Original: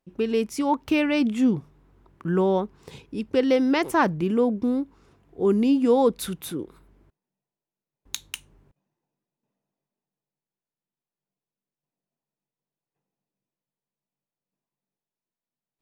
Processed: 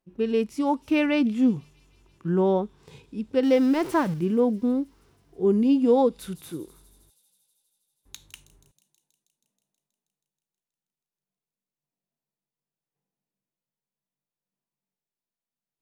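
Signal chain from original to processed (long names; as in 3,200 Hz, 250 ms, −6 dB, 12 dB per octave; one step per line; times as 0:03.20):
0:03.43–0:04.14: converter with a step at zero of −32 dBFS
delay with a high-pass on its return 160 ms, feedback 76%, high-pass 5,400 Hz, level −15.5 dB
harmonic and percussive parts rebalanced percussive −11 dB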